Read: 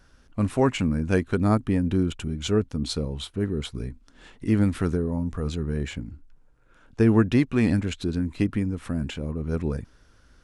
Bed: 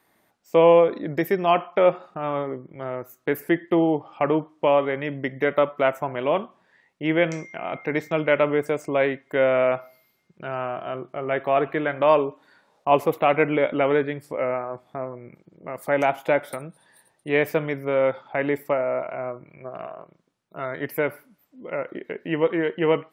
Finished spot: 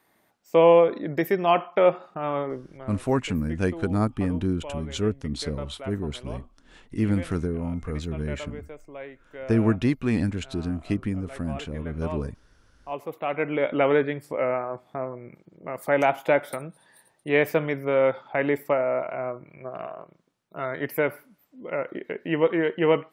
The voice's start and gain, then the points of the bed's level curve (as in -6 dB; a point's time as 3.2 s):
2.50 s, -2.5 dB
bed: 2.68 s -1 dB
3.03 s -18 dB
12.76 s -18 dB
13.8 s 0 dB